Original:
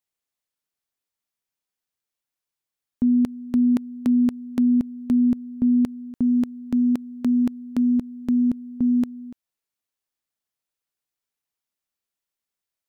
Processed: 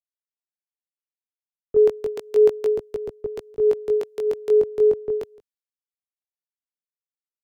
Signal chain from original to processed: speed mistake 45 rpm record played at 78 rpm; chorus 0.32 Hz, delay 17.5 ms, depth 3.6 ms; three bands expanded up and down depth 70%; trim +3 dB

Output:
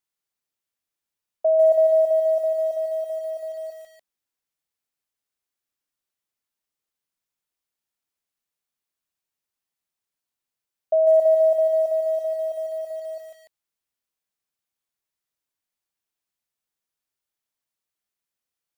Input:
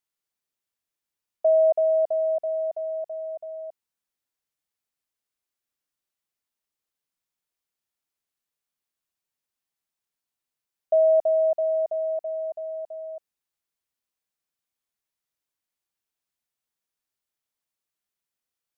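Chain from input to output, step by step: bit-crushed delay 147 ms, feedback 35%, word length 8-bit, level -6.5 dB

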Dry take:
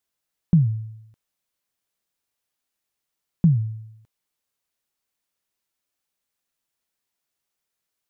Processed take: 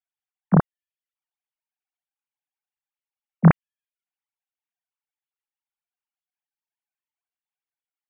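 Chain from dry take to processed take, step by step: formants replaced by sine waves; trim +1.5 dB

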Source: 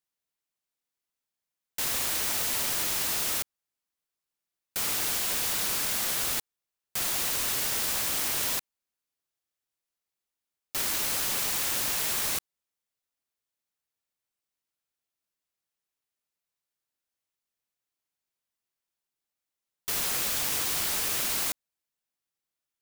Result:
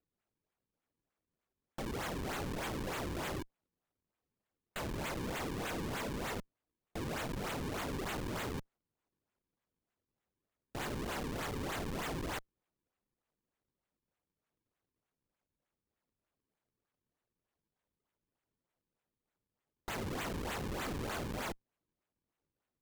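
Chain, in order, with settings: decimation with a swept rate 38×, swing 160% 3.3 Hz; valve stage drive 40 dB, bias 0.8; trim +2.5 dB

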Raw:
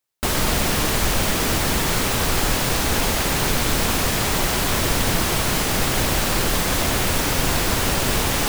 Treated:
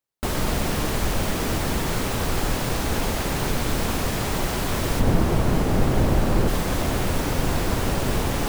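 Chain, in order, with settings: tilt shelf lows +3.5 dB, about 1.2 kHz, from 4.99 s lows +9.5 dB, from 6.47 s lows +5 dB; trim -5 dB

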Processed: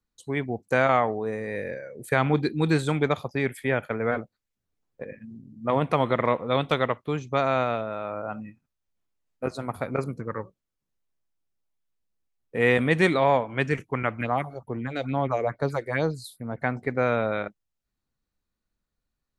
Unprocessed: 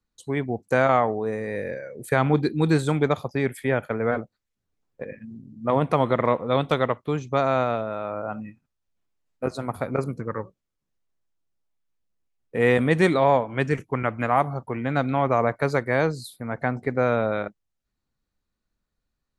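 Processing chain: dynamic bell 2.6 kHz, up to +5 dB, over -39 dBFS, Q 0.93; 14.21–16.62 s: phase shifter stages 4, 2.3 Hz, lowest notch 160–2500 Hz; trim -2.5 dB

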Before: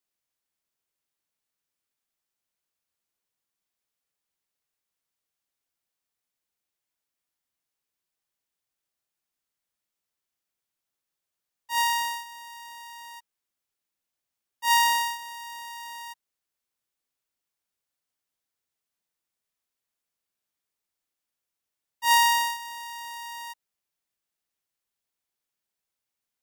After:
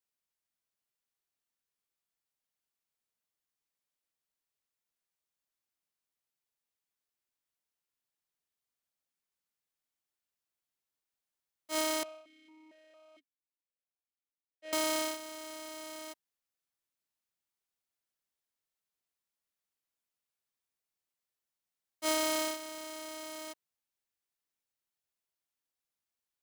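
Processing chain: cycle switcher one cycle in 3, inverted; compression, threshold -23 dBFS, peak gain reduction 7 dB; 12.03–14.73 s: stepped vowel filter 4.4 Hz; trim -5.5 dB

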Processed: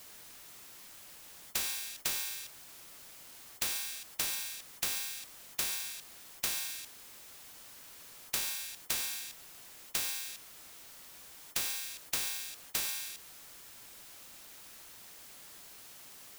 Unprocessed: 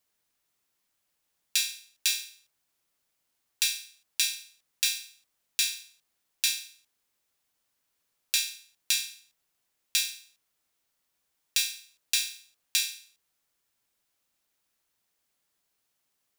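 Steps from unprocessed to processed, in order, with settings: saturation -19 dBFS, distortion -12 dB; peak limiter -24.5 dBFS, peak gain reduction 5.5 dB; spectrum-flattening compressor 4:1; trim +9 dB

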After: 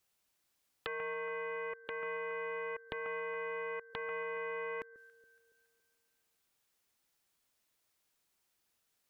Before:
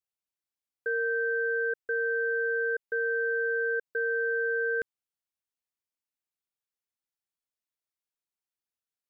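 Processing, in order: inverted gate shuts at -40 dBFS, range -25 dB; echo whose repeats swap between lows and highs 140 ms, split 900 Hz, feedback 64%, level -13.5 dB; loudspeaker Doppler distortion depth 0.74 ms; trim +14 dB

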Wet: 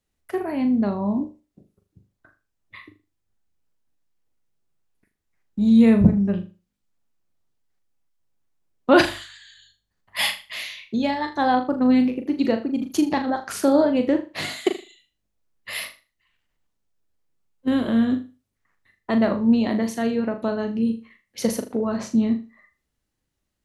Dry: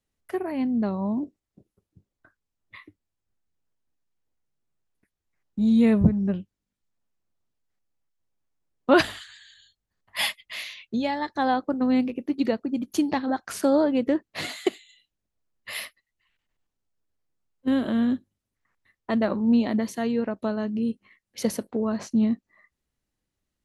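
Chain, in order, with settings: flutter echo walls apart 6.8 m, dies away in 0.31 s; trim +2.5 dB

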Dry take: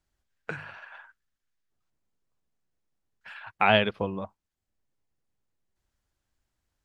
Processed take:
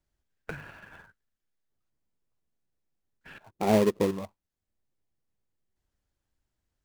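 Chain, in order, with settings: 3.38–4.11 s: FFT filter 110 Hz 0 dB, 380 Hz +12 dB, 1.6 kHz -18 dB; in parallel at -6 dB: sample-rate reducer 1.5 kHz, jitter 20%; on the sum: trim -4.5 dB

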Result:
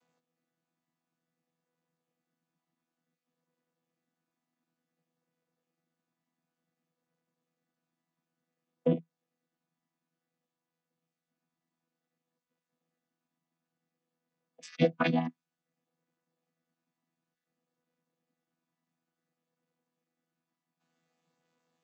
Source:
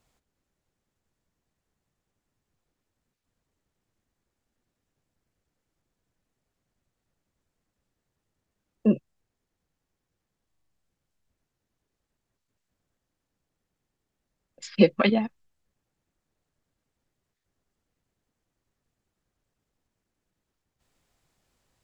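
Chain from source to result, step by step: vocoder on a held chord bare fifth, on E3; bass shelf 400 Hz -12 dB; compression 4:1, threshold -25 dBFS, peak gain reduction 6.5 dB; trim +4 dB

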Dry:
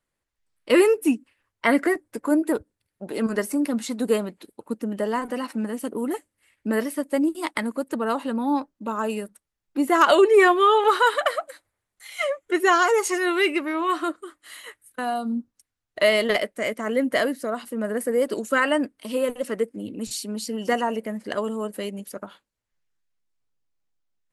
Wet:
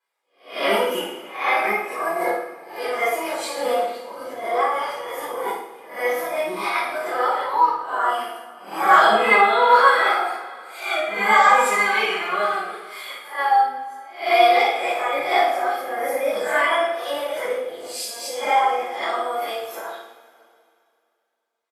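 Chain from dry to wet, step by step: reverse spectral sustain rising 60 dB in 0.42 s; high-pass 600 Hz 24 dB/octave; tilt EQ -3 dB/octave; comb 2.7 ms, depth 46%; dynamic bell 1.2 kHz, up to +3 dB, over -34 dBFS, Q 2.5; in parallel at +3 dB: compression, threshold -29 dBFS, peak gain reduction 19.5 dB; on the sum: harmony voices -12 st -13 dB; flange 0.36 Hz, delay 2.2 ms, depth 2.2 ms, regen -33%; tape speed +12%; on a send: flutter echo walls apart 9.4 m, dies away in 0.41 s; on the sum: two-slope reverb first 0.54 s, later 2.5 s, from -18 dB, DRR -9.5 dB; trim -6.5 dB

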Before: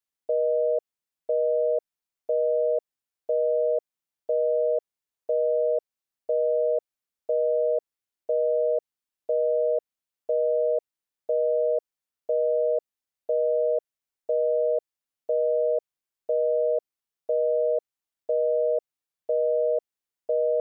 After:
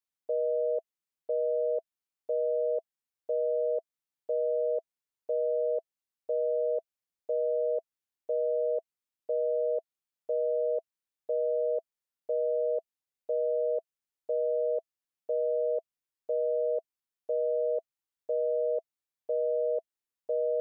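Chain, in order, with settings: band-stop 660 Hz, Q 13; trim -4.5 dB

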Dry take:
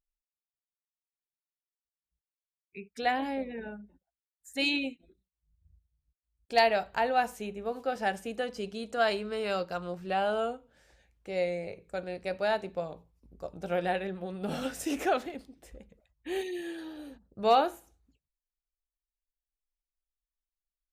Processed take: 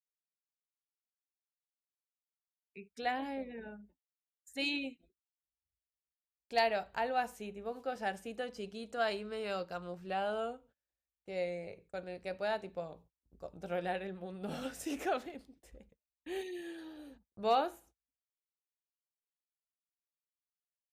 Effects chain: gate -55 dBFS, range -29 dB; trim -6.5 dB

